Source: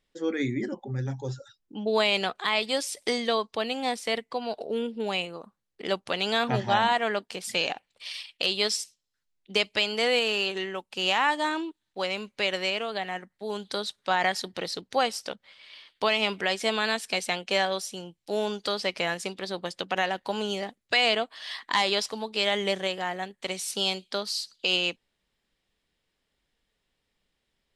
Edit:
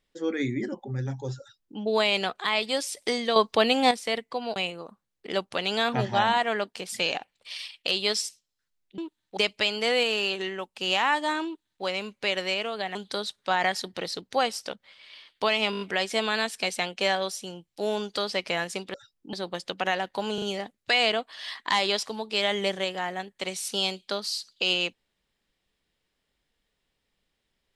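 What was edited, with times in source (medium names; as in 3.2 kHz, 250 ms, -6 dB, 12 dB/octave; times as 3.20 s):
1.40–1.79 s: copy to 19.44 s
3.36–3.91 s: gain +8 dB
4.56–5.11 s: delete
11.61–12.00 s: copy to 9.53 s
13.11–13.55 s: delete
16.31 s: stutter 0.02 s, 6 plays
20.45 s: stutter 0.04 s, 3 plays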